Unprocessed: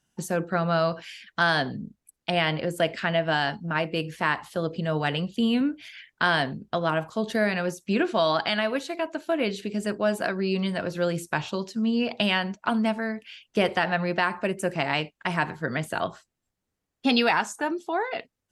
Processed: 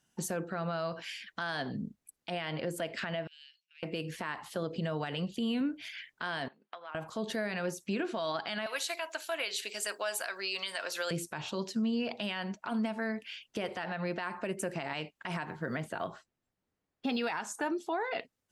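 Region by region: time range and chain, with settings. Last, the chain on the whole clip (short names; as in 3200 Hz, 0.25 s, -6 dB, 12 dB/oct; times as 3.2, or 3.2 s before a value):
3.27–3.83 high shelf 3900 Hz -10 dB + compressor 16:1, threshold -35 dBFS + elliptic high-pass 2500 Hz, stop band 70 dB
6.48–6.95 air absorption 270 m + compressor 16:1, threshold -33 dBFS + HPF 1000 Hz
8.66–11.11 HPF 630 Hz + tilt +3 dB/oct
15.45–17.24 LPF 2500 Hz 6 dB/oct + short-mantissa float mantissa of 6-bit
whole clip: low shelf 89 Hz -8 dB; compressor, threshold -28 dBFS; limiter -24 dBFS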